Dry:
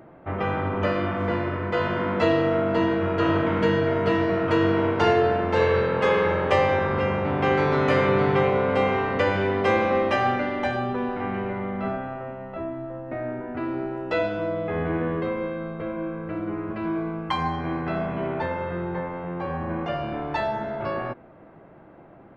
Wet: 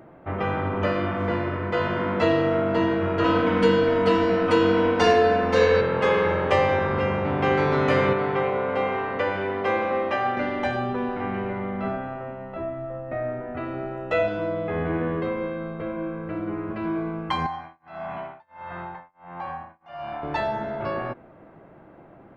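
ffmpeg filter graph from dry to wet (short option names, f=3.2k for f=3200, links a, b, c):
-filter_complex "[0:a]asettb=1/sr,asplit=3[a][b][c];[a]atrim=end=3.244[d];[b]atrim=start=3.24:end=5.81,asetpts=PTS-STARTPTS,afade=t=in:d=0.004:c=qsin,afade=t=out:st=2.566:d=0.004:c=qsin,aemphasis=mode=production:type=cd,aecho=1:1:4:0.82,atrim=end_sample=113337[e];[c]atrim=start=5.806[f];[d][e]acrossfade=d=0.004:c1=hsin:c2=qsin[g];[g][f]acrossfade=d=0.004:c1=qsin:c2=hsin,asettb=1/sr,asplit=3[h][i][j];[h]atrim=end=8.134[k];[i]atrim=start=8.13:end=10.37,asetpts=PTS-STARTPTS,afade=t=in:d=0.004:c=qsin,afade=t=out:st=2.236:d=0.004:c=qsin,lowpass=f=2.2k:p=1,lowshelf=f=290:g=-10[l];[j]atrim=start=10.366[m];[k][l]acrossfade=d=0.004:c1=hsin:c2=qsin[n];[n][m]acrossfade=d=0.004:c1=qsin:c2=hsin,asettb=1/sr,asplit=3[o][p][q];[o]atrim=end=12.624[r];[p]atrim=start=12.62:end=14.28,asetpts=PTS-STARTPTS,afade=t=in:d=0.004:c=qsin,afade=t=out:st=1.656:d=0.004:c=qsin,bandreject=f=4.9k:w=5.1,aecho=1:1:1.6:0.45,atrim=end_sample=73206[s];[q]atrim=start=14.276[t];[r][s]acrossfade=d=0.004:c1=hsin:c2=qsin[u];[u][t]acrossfade=d=0.004:c1=qsin:c2=hsin,asettb=1/sr,asplit=3[v][w][x];[v]atrim=end=17.464[y];[w]atrim=start=17.46:end=20.23,asetpts=PTS-STARTPTS,afade=t=in:d=0.004:c=qsin,afade=t=out:st=2.766:d=0.004:c=qsin,lowshelf=f=590:t=q:w=3:g=-8,acompressor=threshold=-30dB:ratio=2:attack=3.2:release=140:knee=1:detection=peak,tremolo=f=1.5:d=0.99[z];[x]atrim=start=20.226[aa];[y][z]acrossfade=d=0.004:c1=hsin:c2=qsin[ab];[ab][aa]acrossfade=d=0.004:c1=qsin:c2=hsin"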